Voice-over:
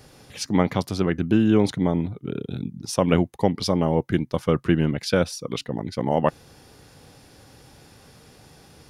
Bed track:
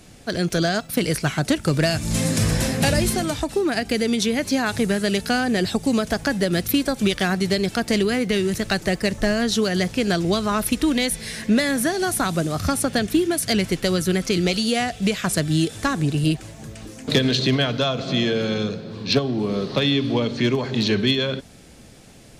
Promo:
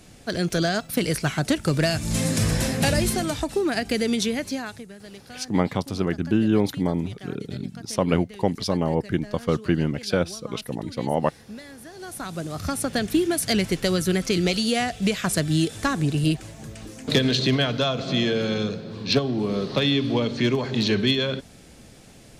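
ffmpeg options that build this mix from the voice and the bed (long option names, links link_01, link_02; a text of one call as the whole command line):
ffmpeg -i stem1.wav -i stem2.wav -filter_complex "[0:a]adelay=5000,volume=-2dB[link_01];[1:a]volume=18dB,afade=type=out:start_time=4.18:duration=0.67:silence=0.105925,afade=type=in:start_time=11.89:duration=1.36:silence=0.1[link_02];[link_01][link_02]amix=inputs=2:normalize=0" out.wav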